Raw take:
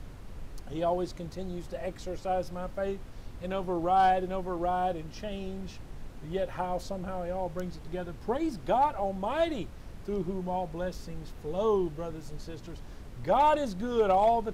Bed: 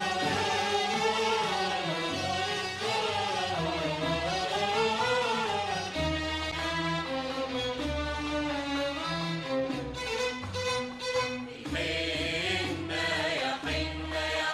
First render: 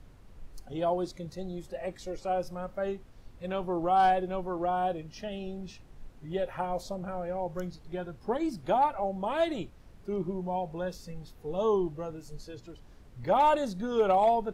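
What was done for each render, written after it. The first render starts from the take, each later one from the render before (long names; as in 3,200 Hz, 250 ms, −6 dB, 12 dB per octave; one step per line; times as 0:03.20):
noise reduction from a noise print 9 dB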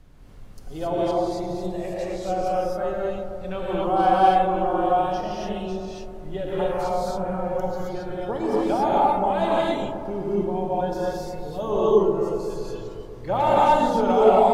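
on a send: delay with a low-pass on its return 129 ms, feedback 74%, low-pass 1,100 Hz, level −7 dB
on the sum: reverb whose tail is shaped and stops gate 300 ms rising, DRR −6 dB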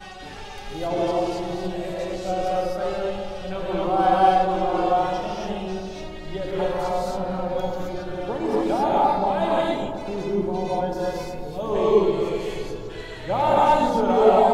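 mix in bed −10 dB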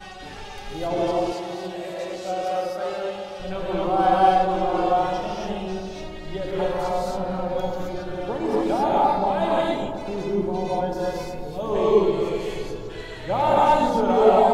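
0:01.32–0:03.40: high-pass filter 370 Hz 6 dB per octave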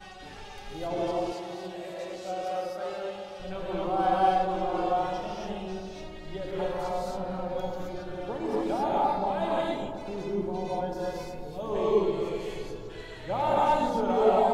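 level −6.5 dB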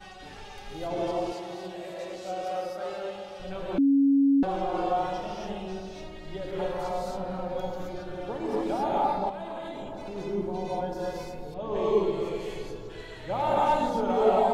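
0:03.78–0:04.43: beep over 277 Hz −17.5 dBFS
0:09.29–0:10.16: downward compressor, threshold −33 dBFS
0:11.54–0:12.03: low-pass that shuts in the quiet parts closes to 2,200 Hz, open at −20.5 dBFS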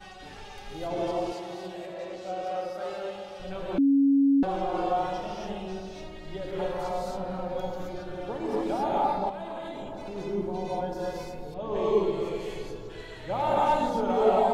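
0:01.85–0:02.74: low-pass filter 3,000 Hz → 5,100 Hz 6 dB per octave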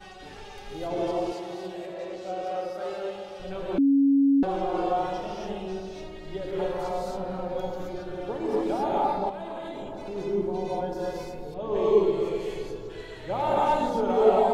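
parametric band 400 Hz +4.5 dB 0.54 octaves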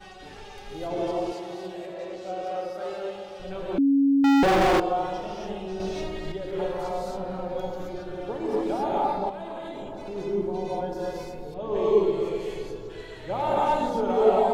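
0:04.24–0:04.80: leveller curve on the samples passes 5
0:05.80–0:06.32: clip gain +7.5 dB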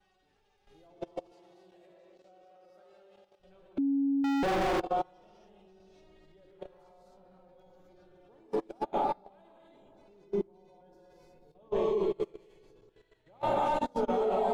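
output level in coarse steps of 13 dB
expander for the loud parts 2.5 to 1, over −38 dBFS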